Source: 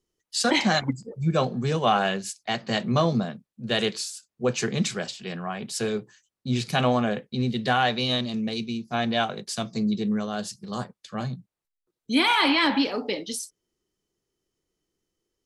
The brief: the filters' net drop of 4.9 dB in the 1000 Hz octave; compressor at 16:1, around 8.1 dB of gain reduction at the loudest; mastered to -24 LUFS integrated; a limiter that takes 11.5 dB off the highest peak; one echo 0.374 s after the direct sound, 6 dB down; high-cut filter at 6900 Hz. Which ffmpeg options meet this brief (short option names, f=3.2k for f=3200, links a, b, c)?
-af "lowpass=6.9k,equalizer=f=1k:t=o:g=-7,acompressor=threshold=-26dB:ratio=16,alimiter=level_in=4dB:limit=-24dB:level=0:latency=1,volume=-4dB,aecho=1:1:374:0.501,volume=12.5dB"